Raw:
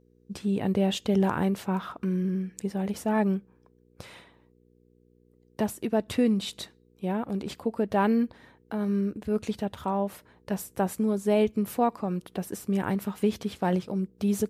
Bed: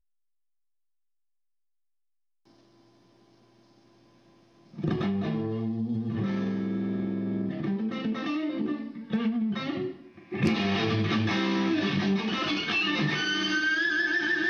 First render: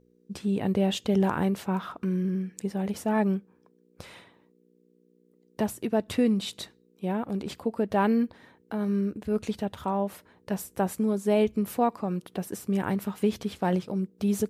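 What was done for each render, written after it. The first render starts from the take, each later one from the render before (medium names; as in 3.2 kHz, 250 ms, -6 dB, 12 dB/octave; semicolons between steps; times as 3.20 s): de-hum 60 Hz, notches 2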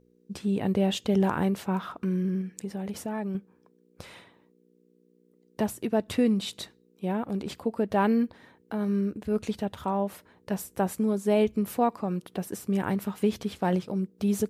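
2.41–3.35 s: compression 3:1, threshold -30 dBFS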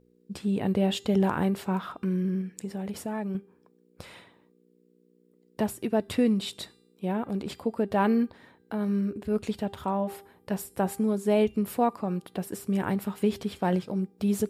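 band-stop 6.1 kHz, Q 10; de-hum 397.6 Hz, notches 30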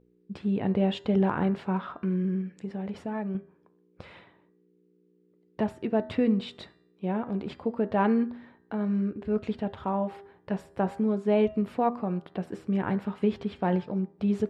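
low-pass 2.8 kHz 12 dB/octave; de-hum 80.16 Hz, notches 25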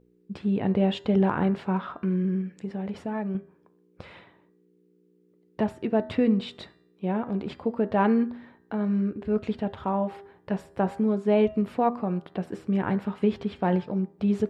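trim +2 dB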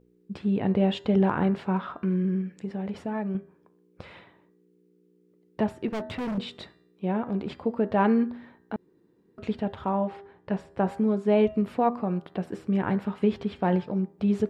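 5.88–6.38 s: hard clipper -28.5 dBFS; 8.76–9.38 s: room tone; 10.07–10.86 s: distance through air 58 m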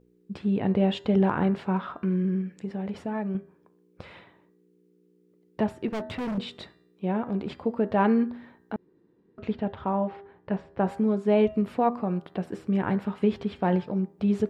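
8.74–10.81 s: Bessel low-pass 3.3 kHz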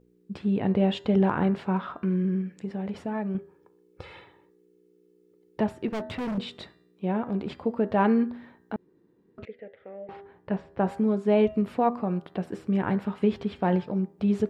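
3.38–5.60 s: comb 2.3 ms, depth 61%; 9.45–10.09 s: two resonant band-passes 1 kHz, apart 2 oct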